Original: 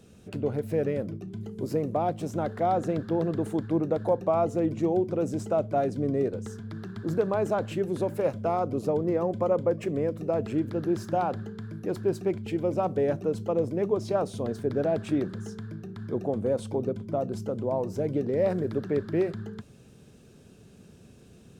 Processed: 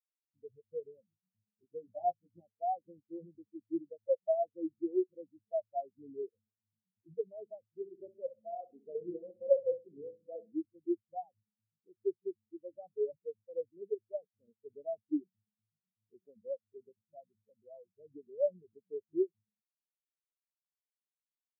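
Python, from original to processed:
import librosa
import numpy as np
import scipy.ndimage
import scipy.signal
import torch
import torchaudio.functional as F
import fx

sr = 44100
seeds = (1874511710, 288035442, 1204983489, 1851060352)

y = fx.doubler(x, sr, ms=17.0, db=-2, at=(1.82, 2.41))
y = fx.room_flutter(y, sr, wall_m=11.0, rt60_s=0.84, at=(7.75, 10.53))
y = fx.spectral_expand(y, sr, expansion=4.0)
y = y * librosa.db_to_amplitude(-3.5)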